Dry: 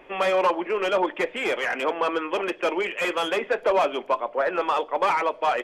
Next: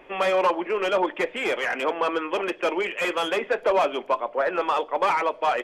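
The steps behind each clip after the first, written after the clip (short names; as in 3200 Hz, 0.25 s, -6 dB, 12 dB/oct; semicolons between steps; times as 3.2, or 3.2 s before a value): nothing audible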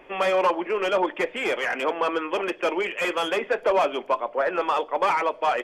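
notch 3900 Hz, Q 13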